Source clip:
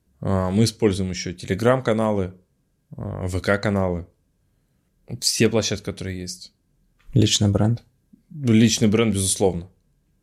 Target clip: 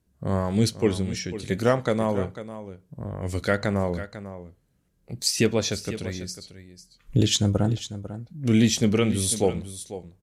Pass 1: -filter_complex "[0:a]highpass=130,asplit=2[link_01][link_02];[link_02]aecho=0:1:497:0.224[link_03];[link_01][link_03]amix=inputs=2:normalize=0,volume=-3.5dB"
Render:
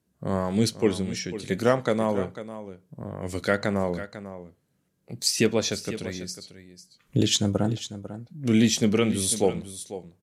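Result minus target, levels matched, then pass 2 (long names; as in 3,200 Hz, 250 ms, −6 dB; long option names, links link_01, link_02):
125 Hz band −3.0 dB
-filter_complex "[0:a]asplit=2[link_01][link_02];[link_02]aecho=0:1:497:0.224[link_03];[link_01][link_03]amix=inputs=2:normalize=0,volume=-3.5dB"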